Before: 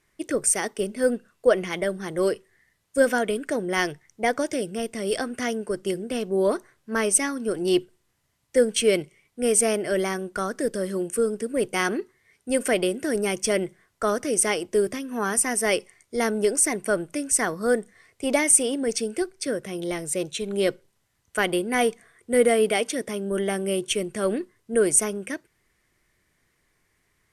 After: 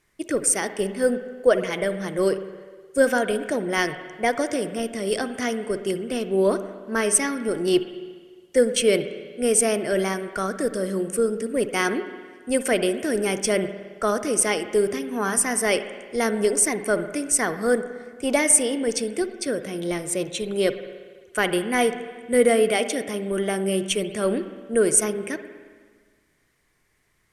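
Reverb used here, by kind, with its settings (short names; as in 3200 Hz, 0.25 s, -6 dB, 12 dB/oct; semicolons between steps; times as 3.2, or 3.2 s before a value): spring tank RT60 1.6 s, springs 52/57 ms, chirp 60 ms, DRR 10 dB; gain +1 dB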